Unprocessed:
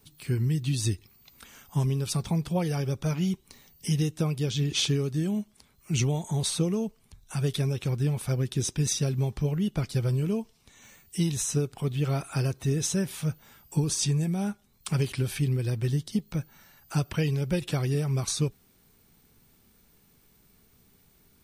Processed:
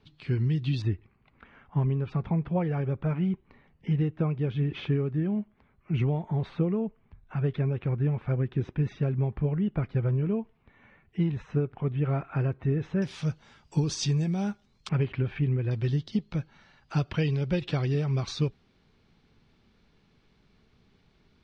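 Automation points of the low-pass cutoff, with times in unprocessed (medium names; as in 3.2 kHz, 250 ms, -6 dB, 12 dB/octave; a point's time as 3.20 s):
low-pass 24 dB/octave
3.9 kHz
from 0.82 s 2.2 kHz
from 13.02 s 5.5 kHz
from 14.89 s 2.5 kHz
from 15.71 s 4.4 kHz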